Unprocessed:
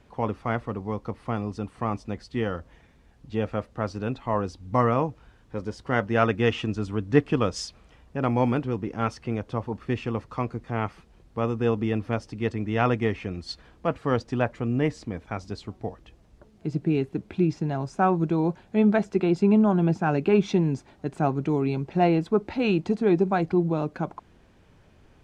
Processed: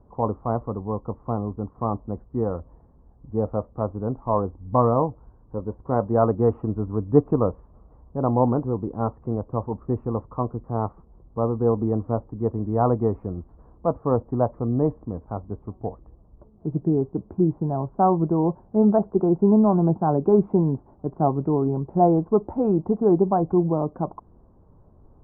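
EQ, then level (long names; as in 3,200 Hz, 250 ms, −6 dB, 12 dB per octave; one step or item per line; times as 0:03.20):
elliptic low-pass filter 1,100 Hz, stop band 80 dB
dynamic equaliser 700 Hz, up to +4 dB, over −34 dBFS, Q 0.94
low-shelf EQ 86 Hz +7 dB
+1.0 dB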